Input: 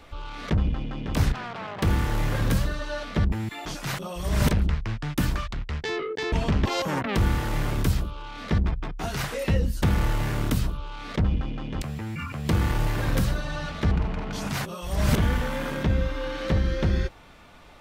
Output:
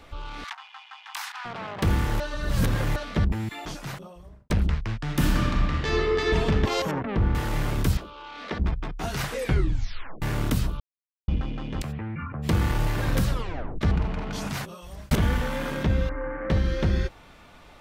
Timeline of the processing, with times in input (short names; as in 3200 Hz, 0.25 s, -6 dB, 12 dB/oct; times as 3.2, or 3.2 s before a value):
0.44–1.45 steep high-pass 800 Hz 72 dB/oct
2.2–2.96 reverse
3.49–4.5 studio fade out
5.03–6.26 reverb throw, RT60 2.5 s, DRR -2.5 dB
6.91–7.35 tape spacing loss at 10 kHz 35 dB
7.97–8.6 three-band isolator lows -19 dB, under 260 Hz, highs -14 dB, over 6000 Hz
9.36 tape stop 0.86 s
10.8–11.28 mute
11.91–12.42 LPF 3000 Hz -> 1400 Hz 24 dB/oct
13.29 tape stop 0.52 s
14.39–15.11 fade out
16.09–16.5 elliptic low-pass 2000 Hz, stop band 50 dB